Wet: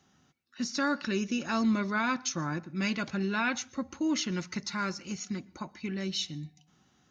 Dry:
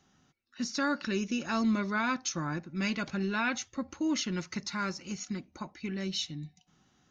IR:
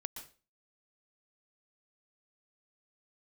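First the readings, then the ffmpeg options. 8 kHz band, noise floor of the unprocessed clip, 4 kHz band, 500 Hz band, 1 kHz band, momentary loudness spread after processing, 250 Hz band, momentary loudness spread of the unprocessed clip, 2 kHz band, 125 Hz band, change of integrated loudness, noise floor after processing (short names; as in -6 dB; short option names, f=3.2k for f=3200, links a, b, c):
n/a, -69 dBFS, +1.0 dB, +1.0 dB, +1.0 dB, 10 LU, +1.0 dB, 10 LU, +1.0 dB, +1.0 dB, +1.0 dB, -68 dBFS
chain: -filter_complex "[0:a]highpass=52,asplit=2[a][b];[1:a]atrim=start_sample=2205[c];[b][c]afir=irnorm=-1:irlink=0,volume=-15.5dB[d];[a][d]amix=inputs=2:normalize=0"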